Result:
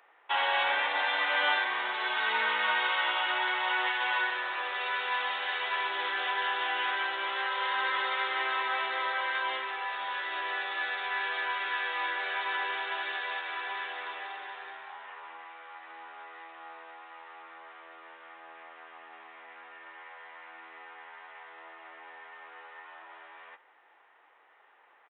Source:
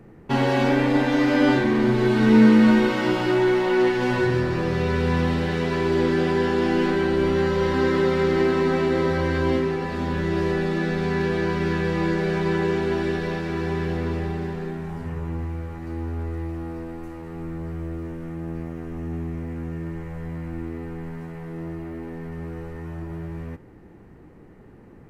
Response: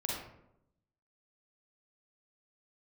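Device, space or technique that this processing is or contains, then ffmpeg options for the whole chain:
musical greeting card: -af "aresample=8000,aresample=44100,highpass=f=810:w=0.5412,highpass=f=810:w=1.3066,equalizer=f=3500:t=o:w=0.49:g=5.5"

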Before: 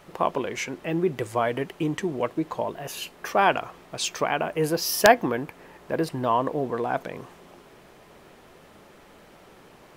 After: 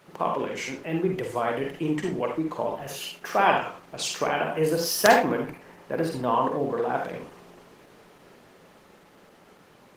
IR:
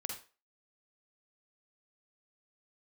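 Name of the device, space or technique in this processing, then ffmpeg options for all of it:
far-field microphone of a smart speaker: -filter_complex "[0:a]asettb=1/sr,asplit=3[s0][s1][s2];[s0]atrim=end=1.164[s3];[s1]atrim=start=1.16:end=1.96,asetpts=PTS-STARTPTS,afade=t=in:d=0.004:c=qsin,afade=t=out:st=0.796:d=0.004:c=qsin,highpass=73[s4];[s2]atrim=start=1.956[s5];[s3][s4]acrossfade=d=0.004:c1=hsin:c2=qsin[s6];[s6][s5]acrossfade=d=0.004:c1=qsin:c2=hsin[s7];[1:a]atrim=start_sample=2205[s8];[s7][s8]afir=irnorm=-1:irlink=0,highpass=f=110:w=0.5412,highpass=f=110:w=1.3066,dynaudnorm=f=220:g=21:m=1.58" -ar 48000 -c:a libopus -b:a 16k

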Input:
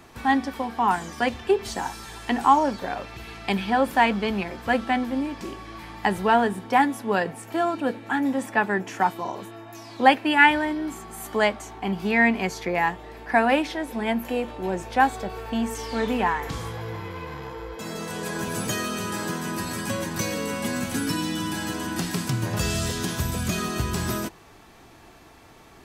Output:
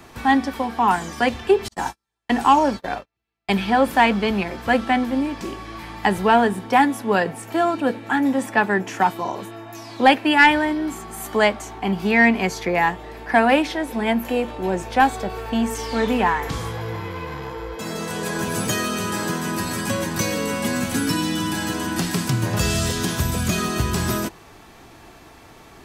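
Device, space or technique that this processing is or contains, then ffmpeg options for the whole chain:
one-band saturation: -filter_complex "[0:a]asettb=1/sr,asplit=3[s0][s1][s2];[s0]atrim=end=1.684[s3];[s1]atrim=start=1.68:end=3.62,asetpts=PTS-STARTPTS,afade=t=in:d=0.004:c=qsin,afade=t=out:st=1.936:d=0.004:c=qsin,agate=range=0.00398:threshold=0.0355:ratio=16:detection=peak[s4];[s2]atrim=start=3.616[s5];[s3][s4]acrossfade=d=0.004:c1=hsin:c2=qsin[s6];[s6][s5]acrossfade=d=0.004:c1=qsin:c2=hsin,acrossover=split=480|2200[s7][s8][s9];[s8]asoftclip=type=tanh:threshold=0.224[s10];[s7][s10][s9]amix=inputs=3:normalize=0,volume=1.68"

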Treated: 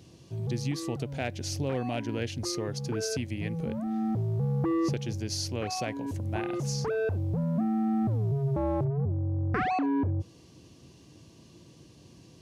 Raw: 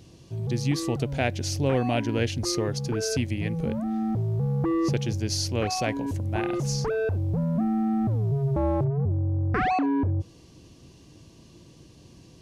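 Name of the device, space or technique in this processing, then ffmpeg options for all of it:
clipper into limiter: -af "asoftclip=type=hard:threshold=0.188,alimiter=limit=0.106:level=0:latency=1:release=408,highpass=76,volume=0.794"

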